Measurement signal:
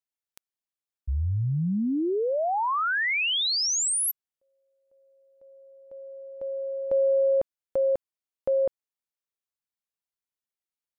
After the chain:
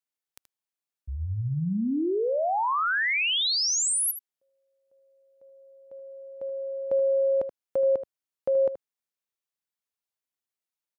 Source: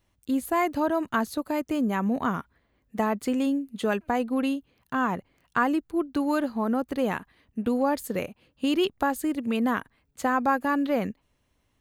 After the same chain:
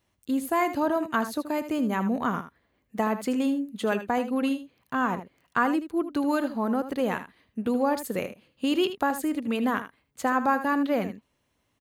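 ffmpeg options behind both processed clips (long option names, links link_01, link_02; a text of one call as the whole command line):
ffmpeg -i in.wav -filter_complex "[0:a]highpass=frequency=120:poles=1,asplit=2[link_01][link_02];[link_02]aecho=0:1:78:0.266[link_03];[link_01][link_03]amix=inputs=2:normalize=0" out.wav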